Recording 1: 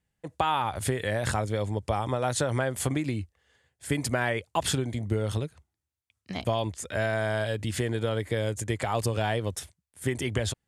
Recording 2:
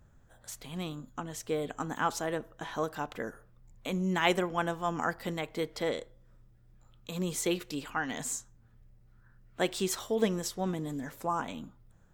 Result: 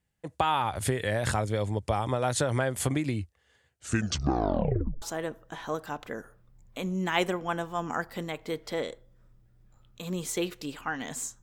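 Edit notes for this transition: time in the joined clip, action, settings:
recording 1
0:03.67: tape stop 1.35 s
0:05.02: continue with recording 2 from 0:02.11

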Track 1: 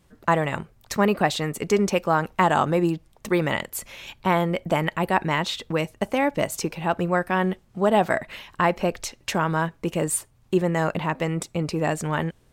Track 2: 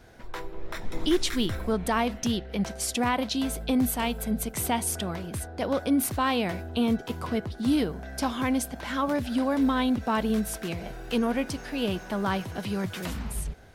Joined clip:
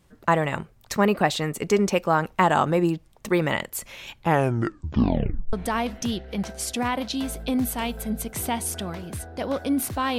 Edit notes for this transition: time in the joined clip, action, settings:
track 1
0:04.13: tape stop 1.40 s
0:05.53: continue with track 2 from 0:01.74

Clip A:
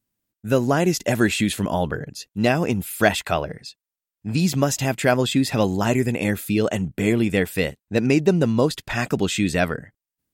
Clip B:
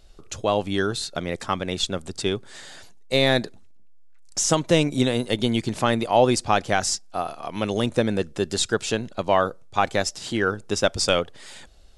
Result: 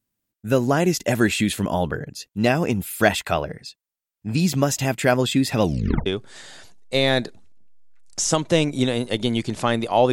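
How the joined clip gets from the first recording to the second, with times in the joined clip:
clip A
0:05.62: tape stop 0.44 s
0:06.06: continue with clip B from 0:02.25

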